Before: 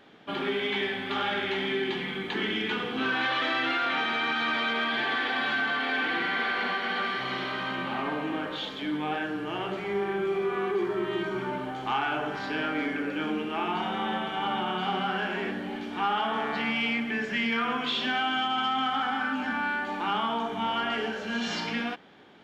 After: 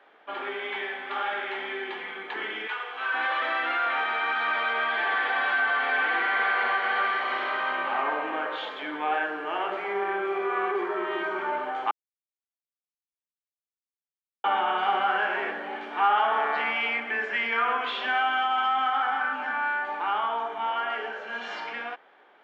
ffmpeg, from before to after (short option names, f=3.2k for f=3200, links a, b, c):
-filter_complex "[0:a]asettb=1/sr,asplit=3[a][b][c];[a]atrim=end=2.674[d];[b]atrim=start=2.67:end=3.14,asetpts=PTS-STARTPTS,afade=t=in:d=0.004:c=qsin,afade=t=out:st=0.466:d=0.004:c=qsin,highpass=690[e];[c]atrim=start=3.136[f];[d][e]acrossfade=d=0.004:c1=hsin:c2=qsin[g];[g][f]acrossfade=d=0.004:c1=qsin:c2=hsin,asplit=3[h][i][j];[h]atrim=end=11.91,asetpts=PTS-STARTPTS,afade=t=out:st=11.906:d=0.004:c=hsin[k];[i]atrim=start=11.91:end=14.44,asetpts=PTS-STARTPTS,volume=0[l];[j]atrim=start=14.44,asetpts=PTS-STARTPTS,afade=t=in:d=0.004:c=hsin[m];[k][l][m]concat=n=3:v=0:a=1,highpass=210,acrossover=split=460 2400:gain=0.0708 1 0.141[n][o][p];[n][o][p]amix=inputs=3:normalize=0,dynaudnorm=f=830:g=13:m=5dB,volume=2dB"